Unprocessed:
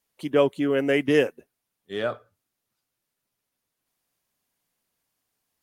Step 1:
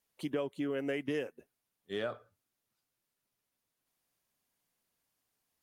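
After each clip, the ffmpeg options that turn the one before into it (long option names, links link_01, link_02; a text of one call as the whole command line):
ffmpeg -i in.wav -af "acompressor=threshold=-28dB:ratio=6,volume=-4dB" out.wav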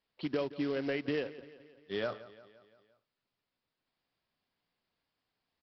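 ffmpeg -i in.wav -af "aresample=11025,acrusher=bits=4:mode=log:mix=0:aa=0.000001,aresample=44100,aecho=1:1:173|346|519|692|865:0.141|0.0805|0.0459|0.0262|0.0149,volume=1dB" out.wav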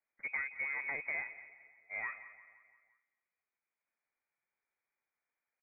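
ffmpeg -i in.wav -filter_complex "[0:a]aeval=exprs='0.106*(cos(1*acos(clip(val(0)/0.106,-1,1)))-cos(1*PI/2))+0.015*(cos(3*acos(clip(val(0)/0.106,-1,1)))-cos(3*PI/2))+0.00299*(cos(5*acos(clip(val(0)/0.106,-1,1)))-cos(5*PI/2))+0.00473*(cos(6*acos(clip(val(0)/0.106,-1,1)))-cos(6*PI/2))':channel_layout=same,asplit=2[link_01][link_02];[link_02]adelay=218,lowpass=frequency=1800:poles=1,volume=-17dB,asplit=2[link_03][link_04];[link_04]adelay=218,lowpass=frequency=1800:poles=1,volume=0.36,asplit=2[link_05][link_06];[link_06]adelay=218,lowpass=frequency=1800:poles=1,volume=0.36[link_07];[link_01][link_03][link_05][link_07]amix=inputs=4:normalize=0,lowpass=frequency=2100:width_type=q:width=0.5098,lowpass=frequency=2100:width_type=q:width=0.6013,lowpass=frequency=2100:width_type=q:width=0.9,lowpass=frequency=2100:width_type=q:width=2.563,afreqshift=-2500,volume=-2.5dB" out.wav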